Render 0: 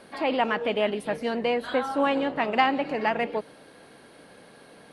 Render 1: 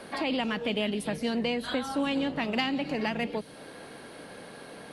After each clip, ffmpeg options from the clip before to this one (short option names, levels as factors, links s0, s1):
-filter_complex "[0:a]acrossover=split=240|3000[s0][s1][s2];[s1]acompressor=threshold=0.0141:ratio=10[s3];[s0][s3][s2]amix=inputs=3:normalize=0,volume=1.88"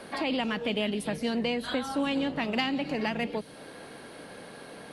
-af anull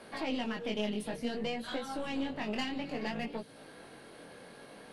-af "aeval=exprs='(tanh(11.2*val(0)+0.6)-tanh(0.6))/11.2':c=same,flanger=delay=17.5:depth=6.3:speed=0.59" -ar 48000 -c:a libmp3lame -b:a 96k